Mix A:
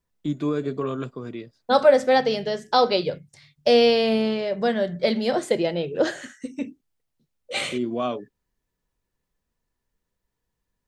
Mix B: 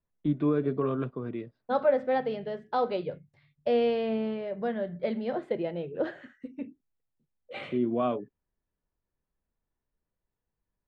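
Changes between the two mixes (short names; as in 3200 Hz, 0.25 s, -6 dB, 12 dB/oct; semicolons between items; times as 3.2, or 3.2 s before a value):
second voice -7.0 dB; master: add air absorption 490 m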